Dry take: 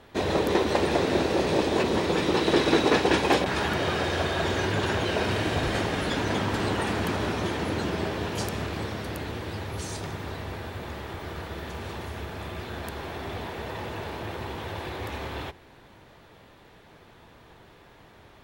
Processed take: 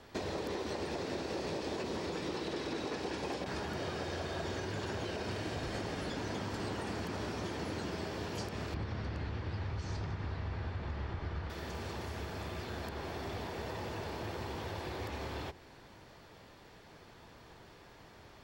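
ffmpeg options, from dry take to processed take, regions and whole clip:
ffmpeg -i in.wav -filter_complex "[0:a]asettb=1/sr,asplit=3[link_01][link_02][link_03];[link_01]atrim=end=8.744[link_04];[link_02]atrim=start=8.74:end=11.5,asetpts=PTS-STARTPTS,afade=type=in:duration=0.004:curve=qsin,afade=type=out:start_time=2.756:duration=0.004:curve=qsin,lowpass=5500,aemphasis=mode=reproduction:type=riaa[link_05];[link_03]atrim=start=11.496[link_06];[link_04][link_05]acrossfade=duration=0.004:curve1=hsin:curve2=qsin[link_07];[link_07][link_06]acrossfade=duration=0.004:curve1=qsin:curve2=hsin,alimiter=limit=-17dB:level=0:latency=1:release=87,acrossover=split=830|4200[link_08][link_09][link_10];[link_08]acompressor=threshold=-34dB:ratio=4[link_11];[link_09]acompressor=threshold=-43dB:ratio=4[link_12];[link_10]acompressor=threshold=-55dB:ratio=4[link_13];[link_11][link_12][link_13]amix=inputs=3:normalize=0,superequalizer=14b=2:15b=1.58,volume=-3.5dB" out.wav

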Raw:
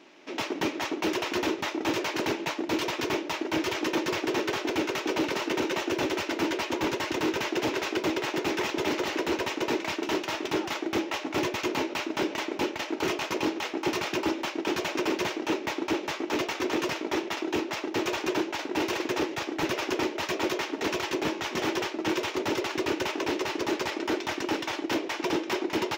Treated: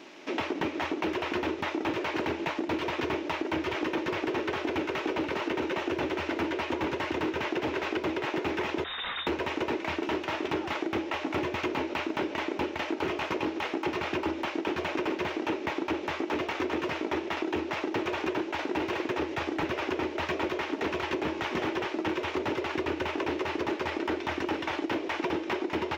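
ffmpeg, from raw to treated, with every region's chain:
ffmpeg -i in.wav -filter_complex "[0:a]asettb=1/sr,asplit=3[link_01][link_02][link_03];[link_01]atrim=end=8.844[link_04];[link_02]atrim=start=8.84:end=9.27,asetpts=PTS-STARTPTS,afade=type=in:duration=0.004:curve=qsin,afade=type=out:start_time=0.426:duration=0.004:curve=qsin,equalizer=frequency=810:width_type=o:width=2:gain=-10.5,volume=32dB,asoftclip=hard,volume=-32dB,lowpass=frequency=3400:width_type=q:width=0.5098,lowpass=frequency=3400:width_type=q:width=0.6013,lowpass=frequency=3400:width_type=q:width=0.9,lowpass=frequency=3400:width_type=q:width=2.563,afreqshift=-4000[link_05];[link_03]atrim=start=9.266[link_06];[link_04][link_05]acrossfade=duration=0.004:curve1=hsin:curve2=qsin[link_07];[link_07][link_06]acrossfade=duration=0.004:curve1=qsin:curve2=hsin,acrossover=split=3300[link_08][link_09];[link_09]acompressor=threshold=-54dB:ratio=4:attack=1:release=60[link_10];[link_08][link_10]amix=inputs=2:normalize=0,equalizer=frequency=81:width_type=o:width=0.27:gain=11.5,acompressor=threshold=-33dB:ratio=6,volume=5.5dB" out.wav

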